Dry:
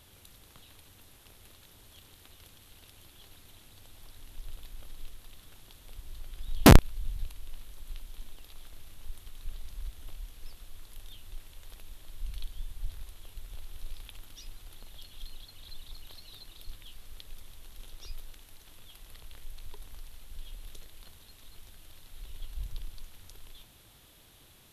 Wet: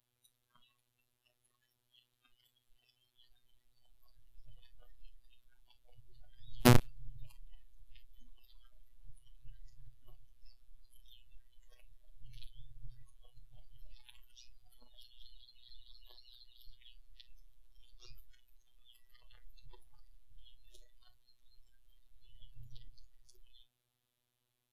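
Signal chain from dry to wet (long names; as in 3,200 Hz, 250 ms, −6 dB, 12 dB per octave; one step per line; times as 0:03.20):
phases set to zero 122 Hz
noise reduction from a noise print of the clip's start 18 dB
level −6 dB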